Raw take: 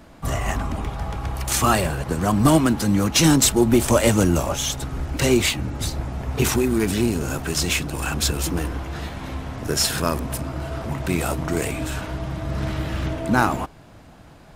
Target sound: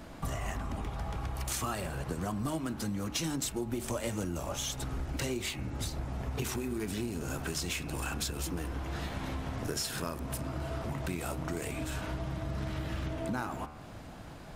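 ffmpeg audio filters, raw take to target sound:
-af "bandreject=f=75.44:t=h:w=4,bandreject=f=150.88:t=h:w=4,bandreject=f=226.32:t=h:w=4,bandreject=f=301.76:t=h:w=4,bandreject=f=377.2:t=h:w=4,bandreject=f=452.64:t=h:w=4,bandreject=f=528.08:t=h:w=4,bandreject=f=603.52:t=h:w=4,bandreject=f=678.96:t=h:w=4,bandreject=f=754.4:t=h:w=4,bandreject=f=829.84:t=h:w=4,bandreject=f=905.28:t=h:w=4,bandreject=f=980.72:t=h:w=4,bandreject=f=1056.16:t=h:w=4,bandreject=f=1131.6:t=h:w=4,bandreject=f=1207.04:t=h:w=4,bandreject=f=1282.48:t=h:w=4,bandreject=f=1357.92:t=h:w=4,bandreject=f=1433.36:t=h:w=4,bandreject=f=1508.8:t=h:w=4,bandreject=f=1584.24:t=h:w=4,bandreject=f=1659.68:t=h:w=4,bandreject=f=1735.12:t=h:w=4,bandreject=f=1810.56:t=h:w=4,bandreject=f=1886:t=h:w=4,bandreject=f=1961.44:t=h:w=4,bandreject=f=2036.88:t=h:w=4,bandreject=f=2112.32:t=h:w=4,bandreject=f=2187.76:t=h:w=4,bandreject=f=2263.2:t=h:w=4,bandreject=f=2338.64:t=h:w=4,bandreject=f=2414.08:t=h:w=4,bandreject=f=2489.52:t=h:w=4,bandreject=f=2564.96:t=h:w=4,bandreject=f=2640.4:t=h:w=4,bandreject=f=2715.84:t=h:w=4,bandreject=f=2791.28:t=h:w=4,acompressor=threshold=0.0224:ratio=6"

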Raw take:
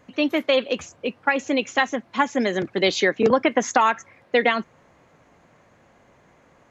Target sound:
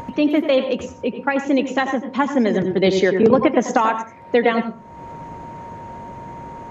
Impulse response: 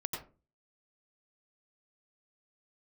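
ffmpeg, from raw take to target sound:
-filter_complex "[0:a]tiltshelf=f=720:g=5.5,aeval=exprs='val(0)+0.00316*sin(2*PI*930*n/s)':c=same,acompressor=mode=upward:threshold=0.0631:ratio=2.5,asplit=2[s0][s1];[1:a]atrim=start_sample=2205[s2];[s1][s2]afir=irnorm=-1:irlink=0,volume=0.708[s3];[s0][s3]amix=inputs=2:normalize=0,volume=0.75"

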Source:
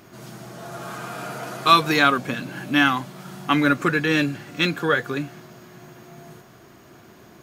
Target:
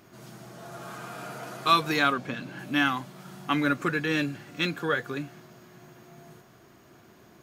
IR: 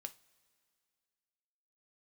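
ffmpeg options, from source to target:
-filter_complex "[0:a]asettb=1/sr,asplit=3[s0][s1][s2];[s0]atrim=end=2.134[s3];[s1]atrim=start=2.13:end=2.59,asetpts=PTS-STARTPTS,afade=t=in:d=0.004:c=qsin,afade=t=out:st=0.456:d=0.004:c=qsin,acrossover=split=6300[s4][s5];[s5]acompressor=threshold=0.00112:ratio=4:attack=1:release=60[s6];[s4][s6]amix=inputs=2:normalize=0[s7];[s2]atrim=start=2.586[s8];[s3][s7]acrossfade=d=0.004:c1=hsin:c2=qsin[s9];[s9][s8]acrossfade=d=0.004:c1=qsin:c2=hsin,volume=0.473"

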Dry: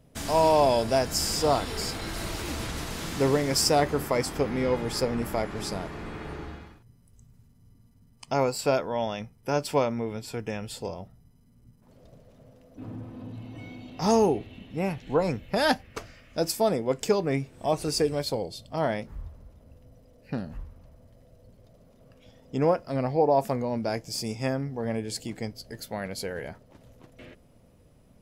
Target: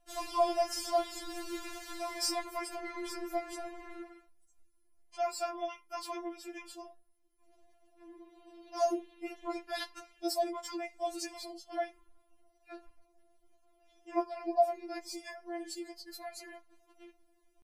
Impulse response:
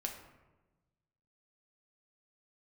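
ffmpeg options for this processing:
-filter_complex "[0:a]atempo=1.6,asplit=2[s0][s1];[1:a]atrim=start_sample=2205,atrim=end_sample=4410[s2];[s1][s2]afir=irnorm=-1:irlink=0,volume=0.447[s3];[s0][s3]amix=inputs=2:normalize=0,afftfilt=real='re*4*eq(mod(b,16),0)':imag='im*4*eq(mod(b,16),0)':win_size=2048:overlap=0.75,volume=0.376"

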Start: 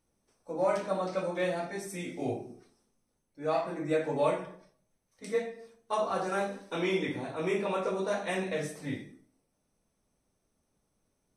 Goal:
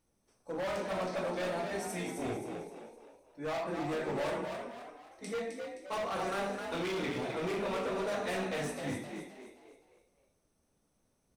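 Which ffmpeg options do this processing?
-filter_complex "[0:a]asoftclip=type=hard:threshold=0.0224,asplit=6[s0][s1][s2][s3][s4][s5];[s1]adelay=261,afreqshift=56,volume=0.501[s6];[s2]adelay=522,afreqshift=112,volume=0.207[s7];[s3]adelay=783,afreqshift=168,volume=0.0841[s8];[s4]adelay=1044,afreqshift=224,volume=0.0347[s9];[s5]adelay=1305,afreqshift=280,volume=0.0141[s10];[s0][s6][s7][s8][s9][s10]amix=inputs=6:normalize=0"

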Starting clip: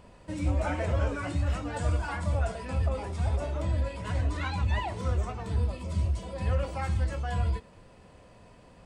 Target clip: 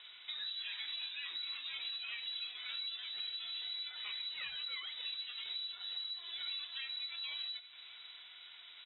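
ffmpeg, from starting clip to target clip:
-filter_complex "[0:a]highpass=60,equalizer=f=1800:t=o:w=1:g=8,acompressor=threshold=0.01:ratio=6,asplit=2[s0][s1];[s1]aecho=0:1:614:0.158[s2];[s0][s2]amix=inputs=2:normalize=0,lowpass=f=3400:t=q:w=0.5098,lowpass=f=3400:t=q:w=0.6013,lowpass=f=3400:t=q:w=0.9,lowpass=f=3400:t=q:w=2.563,afreqshift=-4000,volume=0.891"

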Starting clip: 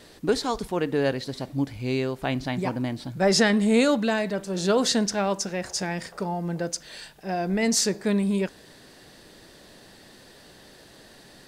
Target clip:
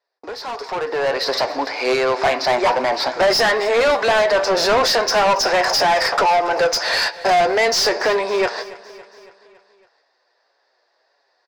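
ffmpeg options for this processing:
-filter_complex "[0:a]agate=range=0.00794:threshold=0.00708:ratio=16:detection=peak,highshelf=f=3500:g=-8,acompressor=threshold=0.0224:ratio=4,highpass=f=450:w=0.5412,highpass=f=450:w=1.3066,equalizer=f=700:t=q:w=4:g=3,equalizer=f=1000:t=q:w=4:g=4,equalizer=f=3100:t=q:w=4:g=-10,equalizer=f=5100:t=q:w=4:g=10,lowpass=f=6300:w=0.5412,lowpass=f=6300:w=1.3066,aeval=exprs='0.0944*(cos(1*acos(clip(val(0)/0.0944,-1,1)))-cos(1*PI/2))+0.0299*(cos(2*acos(clip(val(0)/0.0944,-1,1)))-cos(2*PI/2))':c=same,flanger=delay=6.9:depth=1.7:regen=58:speed=1.7:shape=triangular,asplit=2[s0][s1];[s1]highpass=f=720:p=1,volume=25.1,asoftclip=type=tanh:threshold=0.1[s2];[s0][s2]amix=inputs=2:normalize=0,lowpass=f=3200:p=1,volume=0.501,asoftclip=type=tanh:threshold=0.0596,aecho=1:1:279|558|837|1116|1395:0.119|0.0689|0.04|0.0232|0.0134,dynaudnorm=f=180:g=11:m=5.01,volume=1.12"

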